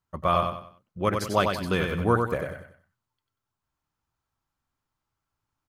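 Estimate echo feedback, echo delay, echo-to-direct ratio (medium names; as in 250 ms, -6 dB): 34%, 94 ms, -4.5 dB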